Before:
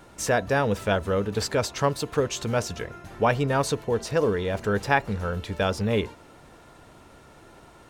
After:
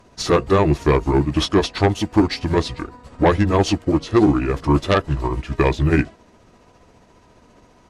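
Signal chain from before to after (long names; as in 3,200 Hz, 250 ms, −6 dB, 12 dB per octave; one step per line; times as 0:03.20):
pitch shift by two crossfaded delay taps −6 semitones
sine wavefolder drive 8 dB, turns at −7 dBFS
expander for the loud parts 1.5 to 1, over −33 dBFS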